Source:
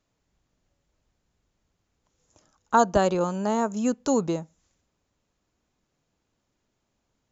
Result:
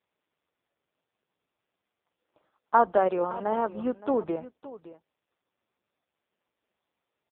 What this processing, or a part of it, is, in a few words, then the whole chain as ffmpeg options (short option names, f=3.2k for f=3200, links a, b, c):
satellite phone: -filter_complex "[0:a]asplit=3[a][b][c];[a]afade=t=out:st=2.74:d=0.02[d];[b]adynamicequalizer=threshold=0.00562:dfrequency=120:dqfactor=1.7:tfrequency=120:tqfactor=1.7:attack=5:release=100:ratio=0.375:range=1.5:mode=cutabove:tftype=bell,afade=t=in:st=2.74:d=0.02,afade=t=out:st=4.04:d=0.02[e];[c]afade=t=in:st=4.04:d=0.02[f];[d][e][f]amix=inputs=3:normalize=0,highpass=330,lowpass=3.1k,aecho=1:1:567:0.158" -ar 8000 -c:a libopencore_amrnb -b:a 4750